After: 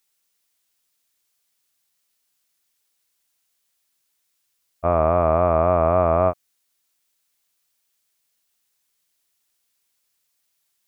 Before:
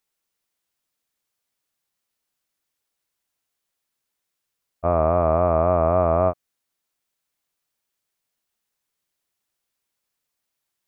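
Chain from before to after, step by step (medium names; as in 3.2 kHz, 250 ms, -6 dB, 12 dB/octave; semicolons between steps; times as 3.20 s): treble shelf 2 kHz +9.5 dB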